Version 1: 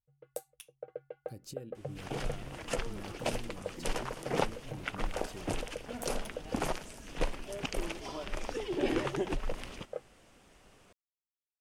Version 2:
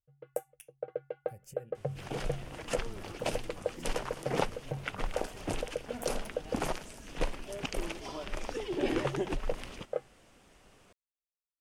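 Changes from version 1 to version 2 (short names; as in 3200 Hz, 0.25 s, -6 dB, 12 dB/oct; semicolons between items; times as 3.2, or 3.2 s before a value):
speech: add fixed phaser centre 1100 Hz, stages 6; first sound +6.0 dB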